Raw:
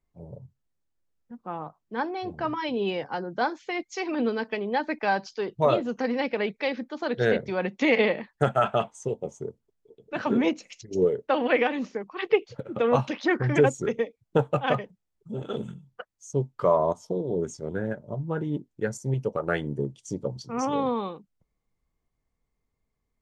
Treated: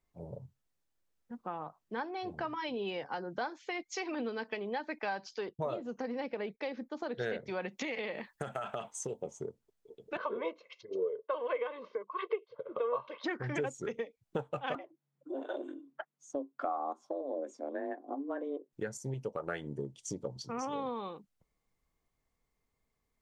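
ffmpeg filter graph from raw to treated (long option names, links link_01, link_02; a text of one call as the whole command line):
ffmpeg -i in.wav -filter_complex "[0:a]asettb=1/sr,asplit=3[link_01][link_02][link_03];[link_01]atrim=end=5.494[link_04];[link_02]atrim=start=5.49:end=7.15,asetpts=PTS-STARTPTS,afade=type=in:duration=0.004:curve=qsin,afade=type=out:start_time=1.656:duration=0.004:curve=qsin,agate=range=-33dB:threshold=-45dB:ratio=3:release=100:detection=peak,equalizer=frequency=2900:width=0.45:gain=-8[link_05];[link_03]atrim=start=7.146[link_06];[link_04][link_05]acrossfade=duration=0.004:curve1=hsin:curve2=qsin[link_07];[link_07][link_06]acrossfade=duration=0.004:curve1=qsin:curve2=hsin,asettb=1/sr,asplit=3[link_08][link_09][link_10];[link_08]atrim=end=7.684[link_11];[link_09]atrim=start=7.68:end=9.22,asetpts=PTS-STARTPTS,afade=type=in:duration=0.004:curve=qsin,afade=type=out:start_time=1.536:duration=0.004:curve=qsin,highshelf=frequency=7100:gain=9,acompressor=threshold=-26dB:ratio=6:attack=3.2:release=140:knee=1:detection=peak[link_12];[link_10]atrim=start=9.216[link_13];[link_11][link_12]acrossfade=duration=0.004:curve1=hsin:curve2=qsin[link_14];[link_14][link_13]acrossfade=duration=0.004:curve1=qsin:curve2=hsin,asettb=1/sr,asplit=3[link_15][link_16][link_17];[link_15]atrim=end=10.174[link_18];[link_16]atrim=start=10.17:end=13.24,asetpts=PTS-STARTPTS,afade=type=in:duration=0.004:curve=qsin,afade=type=out:start_time=3.066:duration=0.004:curve=qsin,highpass=340,equalizer=frequency=450:width_type=q:width=4:gain=4,equalizer=frequency=770:width_type=q:width=4:gain=-4,equalizer=frequency=1100:width_type=q:width=4:gain=8,equalizer=frequency=1700:width_type=q:width=4:gain=-9,equalizer=frequency=2600:width_type=q:width=4:gain=-9,lowpass=frequency=3300:width=0.5412,lowpass=frequency=3300:width=1.3066,aecho=1:1:1.9:0.66,atrim=end_sample=135387[link_19];[link_17]atrim=start=13.236[link_20];[link_18][link_19]acrossfade=duration=0.004:curve1=hsin:curve2=qsin[link_21];[link_21][link_20]acrossfade=duration=0.004:curve1=qsin:curve2=hsin,asettb=1/sr,asplit=3[link_22][link_23][link_24];[link_22]atrim=end=14.754[link_25];[link_23]atrim=start=14.75:end=18.73,asetpts=PTS-STARTPTS,afade=type=in:duration=0.004:curve=qsin,afade=type=out:start_time=3.976:duration=0.004:curve=qsin,lowpass=frequency=1500:poles=1,afreqshift=140[link_26];[link_24]atrim=start=18.726[link_27];[link_25][link_26]acrossfade=duration=0.004:curve1=hsin:curve2=qsin[link_28];[link_28][link_27]acrossfade=duration=0.004:curve1=qsin:curve2=hsin,lowshelf=frequency=320:gain=-6.5,acompressor=threshold=-39dB:ratio=3,volume=2dB" out.wav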